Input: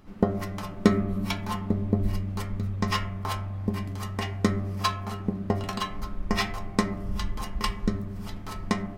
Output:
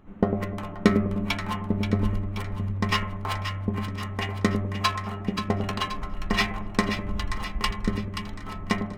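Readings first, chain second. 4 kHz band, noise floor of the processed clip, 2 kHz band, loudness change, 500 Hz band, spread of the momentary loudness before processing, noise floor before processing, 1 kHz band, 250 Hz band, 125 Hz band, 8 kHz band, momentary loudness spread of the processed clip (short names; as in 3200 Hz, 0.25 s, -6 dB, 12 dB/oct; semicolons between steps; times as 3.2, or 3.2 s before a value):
+3.5 dB, -36 dBFS, +5.0 dB, +1.5 dB, +1.0 dB, 7 LU, -38 dBFS, +2.0 dB, +1.0 dB, +1.0 dB, -0.5 dB, 7 LU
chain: Wiener smoothing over 9 samples; dynamic EQ 2400 Hz, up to +6 dB, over -45 dBFS, Q 0.97; split-band echo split 880 Hz, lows 0.101 s, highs 0.529 s, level -8 dB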